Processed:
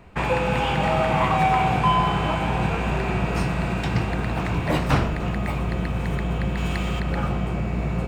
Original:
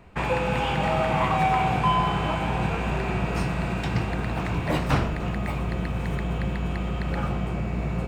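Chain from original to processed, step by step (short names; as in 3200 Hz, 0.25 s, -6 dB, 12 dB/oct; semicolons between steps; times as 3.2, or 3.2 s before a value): 6.57–7 high shelf 2200 Hz +10 dB; gain +2.5 dB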